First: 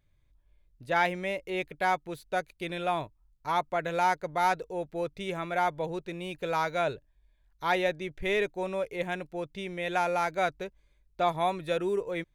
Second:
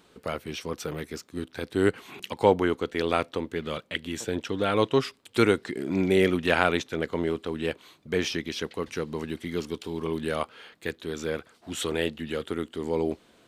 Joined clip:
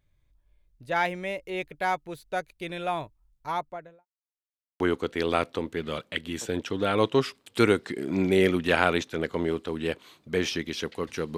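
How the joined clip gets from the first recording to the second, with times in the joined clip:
first
0:03.39–0:04.06: fade out and dull
0:04.06–0:04.80: silence
0:04.80: continue with second from 0:02.59

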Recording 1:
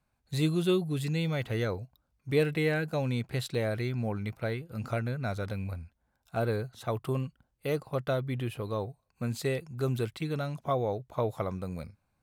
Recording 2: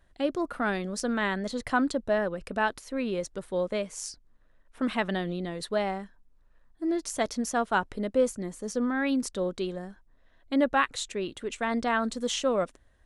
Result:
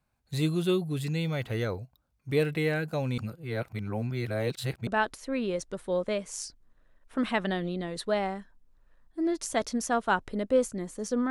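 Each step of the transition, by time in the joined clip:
recording 1
0:03.18–0:04.87: reverse
0:04.87: continue with recording 2 from 0:02.51

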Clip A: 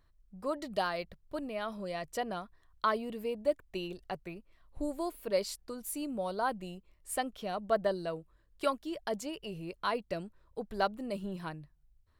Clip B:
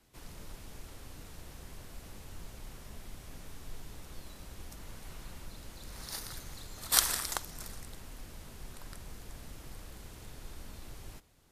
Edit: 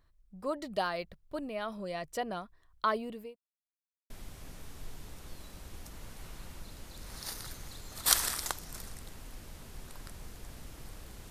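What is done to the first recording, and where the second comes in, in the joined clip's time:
clip A
0:02.95–0:03.36: fade out equal-power
0:03.36–0:04.10: silence
0:04.10: continue with clip B from 0:02.96

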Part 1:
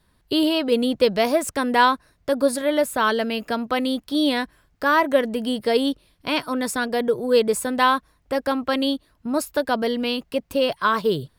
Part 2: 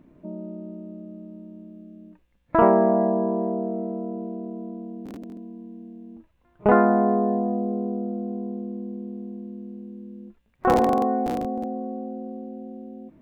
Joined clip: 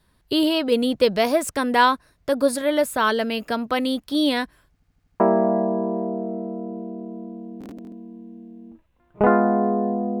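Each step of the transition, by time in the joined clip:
part 1
0:04.72: stutter in place 0.08 s, 6 plays
0:05.20: continue with part 2 from 0:02.65

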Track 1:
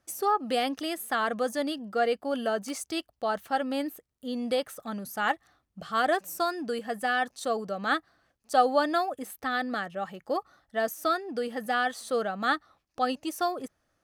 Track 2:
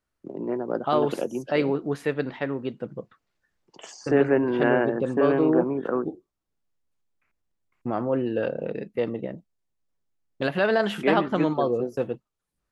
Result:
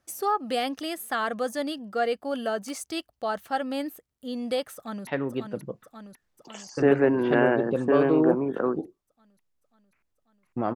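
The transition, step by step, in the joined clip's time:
track 1
0:04.75–0:05.07: delay throw 540 ms, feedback 70%, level −6 dB
0:05.07: continue with track 2 from 0:02.36

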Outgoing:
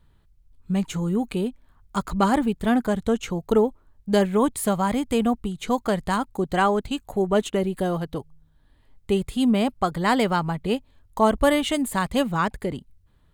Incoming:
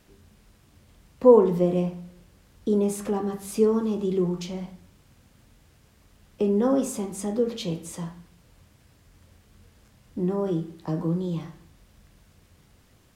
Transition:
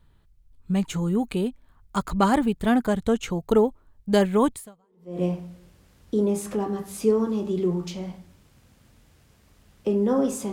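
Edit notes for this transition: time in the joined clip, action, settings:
outgoing
0:04.87: continue with incoming from 0:01.41, crossfade 0.68 s exponential

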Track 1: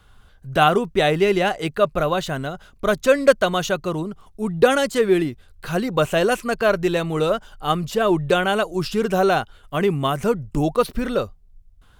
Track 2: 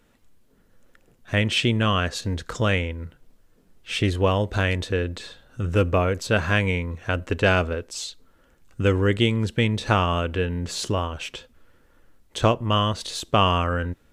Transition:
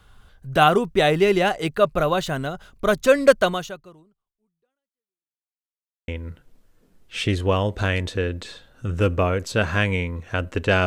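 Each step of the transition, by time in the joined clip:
track 1
0:03.47–0:05.45: fade out exponential
0:05.45–0:06.08: silence
0:06.08: continue with track 2 from 0:02.83

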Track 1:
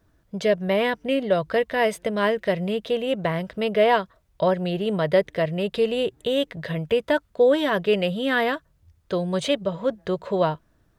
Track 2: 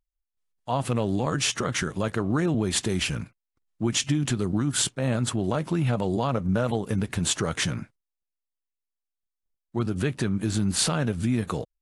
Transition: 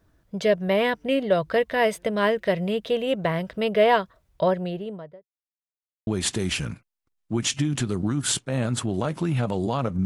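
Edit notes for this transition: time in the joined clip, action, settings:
track 1
0:04.30–0:05.29: fade out and dull
0:05.29–0:06.07: silence
0:06.07: continue with track 2 from 0:02.57

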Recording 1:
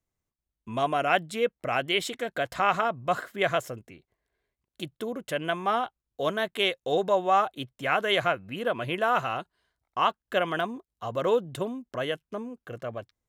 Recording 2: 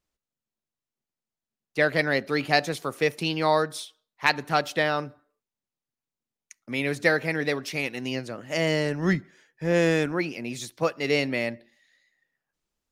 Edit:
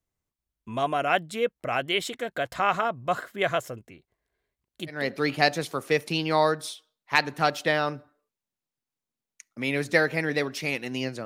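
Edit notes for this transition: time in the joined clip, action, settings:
recording 1
0:05.00: continue with recording 2 from 0:02.11, crossfade 0.28 s

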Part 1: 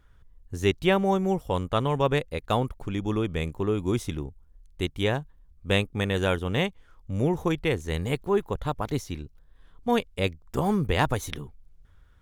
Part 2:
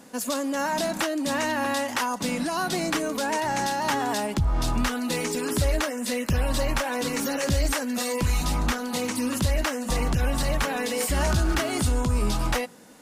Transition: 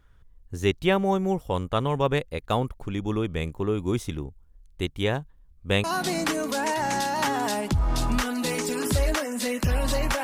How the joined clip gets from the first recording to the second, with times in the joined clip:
part 1
0:05.84: continue with part 2 from 0:02.50

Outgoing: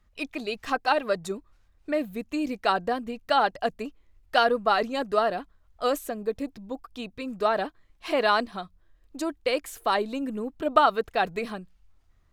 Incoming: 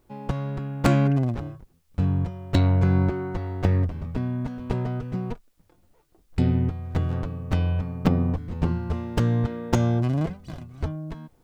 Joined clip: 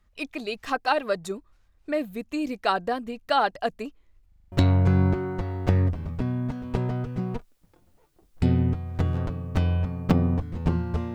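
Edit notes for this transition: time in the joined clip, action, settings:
outgoing
0:04.28: stutter in place 0.04 s, 6 plays
0:04.52: continue with incoming from 0:02.48

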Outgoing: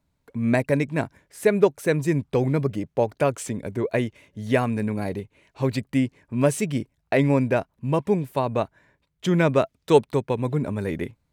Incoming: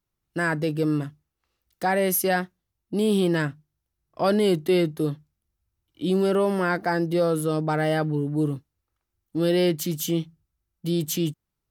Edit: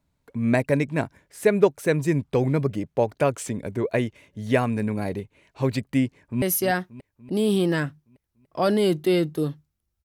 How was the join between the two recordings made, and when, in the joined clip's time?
outgoing
0:06.08–0:06.42: delay throw 290 ms, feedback 65%, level −13.5 dB
0:06.42: continue with incoming from 0:02.04

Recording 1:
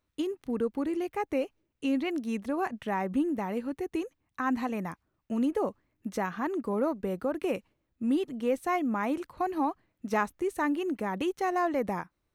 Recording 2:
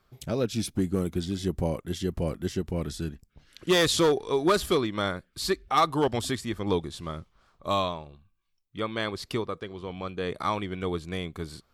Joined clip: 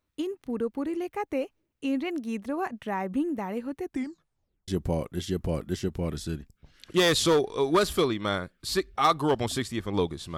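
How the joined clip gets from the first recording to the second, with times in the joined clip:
recording 1
0:03.83: tape stop 0.85 s
0:04.68: continue with recording 2 from 0:01.41

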